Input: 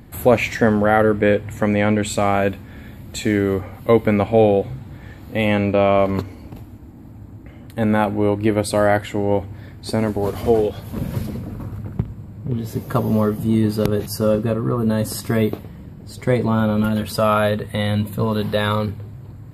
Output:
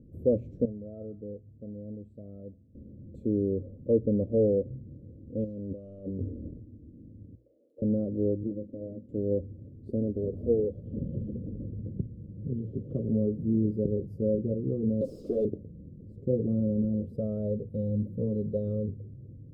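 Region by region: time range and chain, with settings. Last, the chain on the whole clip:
0.65–2.75 HPF 48 Hz + low shelf 300 Hz +7.5 dB + resonator 650 Hz, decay 0.26 s, mix 90%
5.44–6.51 self-modulated delay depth 0.42 ms + negative-ratio compressor -27 dBFS
7.35–7.82 HPF 480 Hz 24 dB/oct + overloaded stage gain 30 dB
8.43–9.09 minimum comb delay 3.6 ms + band-pass 220 Hz, Q 1
10.85–13.09 synth low-pass 3100 Hz, resonance Q 8.2 + three-band squash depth 40%
15.01–15.45 HPF 310 Hz + bell 5100 Hz +13 dB 1.5 oct + overdrive pedal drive 31 dB, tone 5400 Hz, clips at -8 dBFS
whole clip: elliptic low-pass 530 Hz, stop band 40 dB; notches 60/120 Hz; gain -8.5 dB

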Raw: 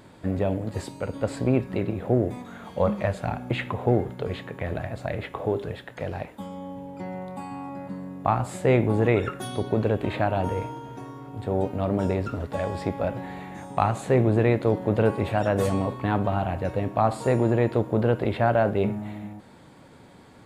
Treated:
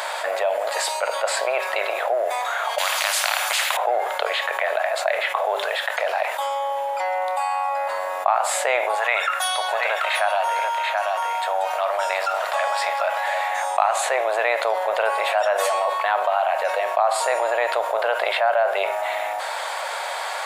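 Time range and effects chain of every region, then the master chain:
2.78–3.77 HPF 1300 Hz 6 dB/oct + spectral compressor 4:1
8.95–13.48 HPF 790 Hz + echo 0.734 s -7.5 dB
whole clip: elliptic high-pass 620 Hz, stop band 60 dB; fast leveller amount 70%; gain +2.5 dB

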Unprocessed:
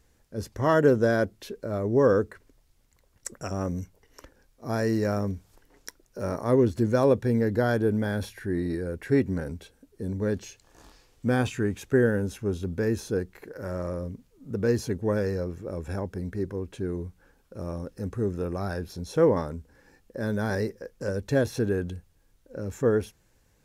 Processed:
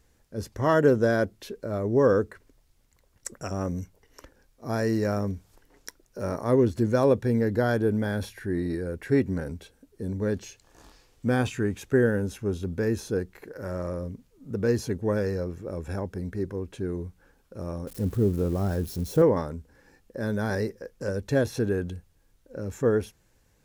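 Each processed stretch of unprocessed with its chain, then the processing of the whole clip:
17.87–19.22 switching spikes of -29 dBFS + tilt shelf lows +6.5 dB, about 700 Hz
whole clip: dry

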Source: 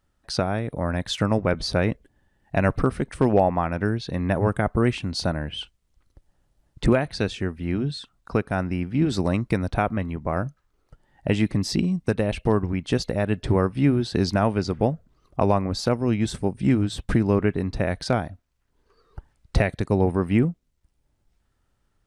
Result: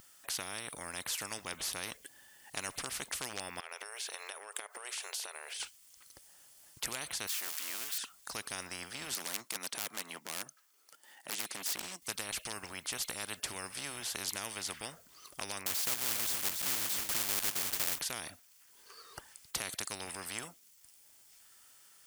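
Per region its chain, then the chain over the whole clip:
3.6–5.6 brick-wall FIR high-pass 390 Hz + compressor 12:1, threshold -36 dBFS
7.27–7.98 zero-crossing step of -40.5 dBFS + HPF 1200 Hz
9.14–12.02 HPF 210 Hz 24 dB/oct + transient shaper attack -12 dB, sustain -8 dB + hard clip -26.5 dBFS
15.66–18.01 block floating point 3-bit + echo 0.283 s -13.5 dB
whole clip: differentiator; notch 3900 Hz, Q 13; spectral compressor 4:1; gain +2.5 dB

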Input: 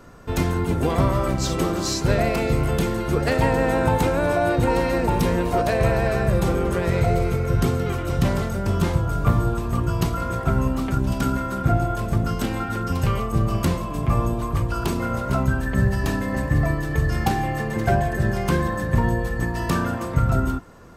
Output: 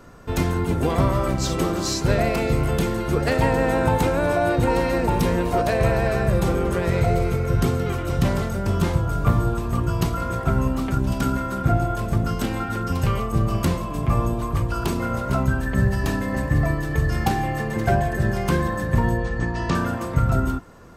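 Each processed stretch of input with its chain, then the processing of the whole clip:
19.17–19.75 LPF 6600 Hz 24 dB/oct + notch 5200 Hz, Q 29
whole clip: dry

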